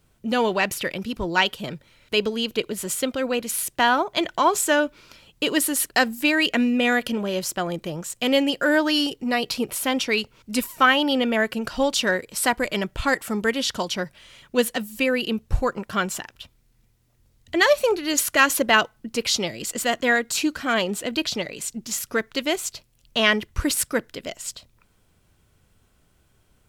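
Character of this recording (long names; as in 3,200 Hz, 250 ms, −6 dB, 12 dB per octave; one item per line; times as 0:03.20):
background noise floor −63 dBFS
spectral slope −3.5 dB per octave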